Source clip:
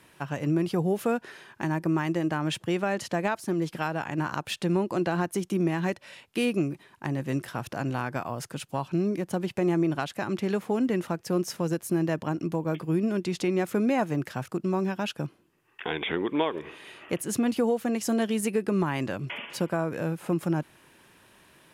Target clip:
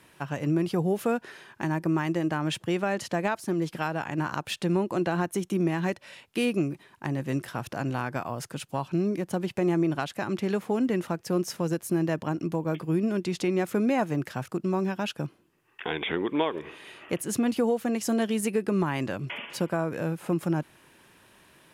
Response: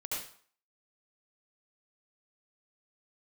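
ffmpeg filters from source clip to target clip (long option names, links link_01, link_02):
-filter_complex "[0:a]asettb=1/sr,asplit=3[link_01][link_02][link_03];[link_01]atrim=end=4.764[link_04];[link_02]atrim=start=4.76:end=5.53,asetpts=PTS-STARTPTS,afade=type=in:duration=0.004:curve=qsin,afade=type=out:start_time=0.766:duration=0.004:curve=qsin,bandreject=frequency=4800:width=8.9[link_05];[link_03]atrim=start=5.526[link_06];[link_04][link_05]acrossfade=duration=0.004:curve1=hsin:curve2=qsin[link_07];[link_07][link_06]acrossfade=duration=0.004:curve1=qsin:curve2=hsin"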